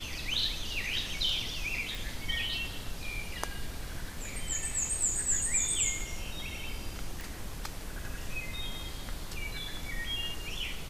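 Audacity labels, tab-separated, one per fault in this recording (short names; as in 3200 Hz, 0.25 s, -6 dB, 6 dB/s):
1.950000	1.950000	pop
7.210000	7.210000	pop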